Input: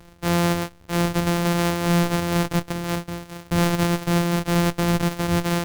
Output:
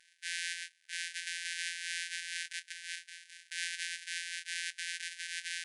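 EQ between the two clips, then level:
linear-phase brick-wall band-pass 1,500–11,000 Hz
−7.5 dB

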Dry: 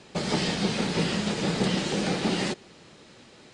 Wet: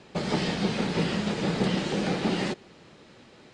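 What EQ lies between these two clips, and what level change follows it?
high-shelf EQ 5,100 Hz −10 dB
0.0 dB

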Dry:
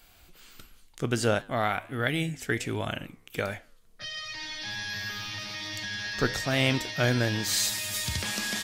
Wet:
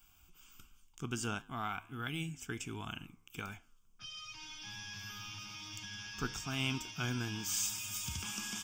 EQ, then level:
high-shelf EQ 11,000 Hz +11 dB
dynamic equaliser 110 Hz, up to −4 dB, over −41 dBFS
phaser with its sweep stopped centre 2,800 Hz, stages 8
−7.5 dB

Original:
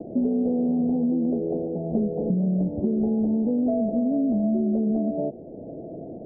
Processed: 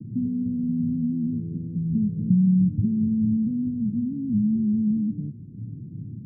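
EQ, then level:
high-pass filter 84 Hz
inverse Chebyshev low-pass filter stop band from 670 Hz, stop band 60 dB
parametric band 110 Hz +14.5 dB 0.47 octaves
+5.5 dB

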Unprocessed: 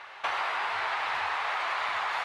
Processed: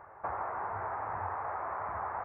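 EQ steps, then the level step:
Gaussian smoothing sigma 7.5 samples
parametric band 73 Hz +14.5 dB 2.7 octaves
0.0 dB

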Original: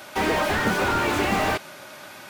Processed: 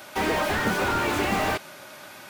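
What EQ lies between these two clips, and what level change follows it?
high-shelf EQ 11,000 Hz +3.5 dB
−2.0 dB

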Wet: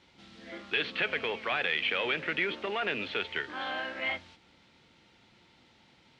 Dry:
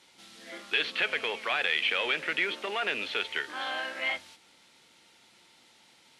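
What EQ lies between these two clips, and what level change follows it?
high-frequency loss of the air 88 metres
RIAA equalisation playback
high-shelf EQ 2,300 Hz +8.5 dB
−2.0 dB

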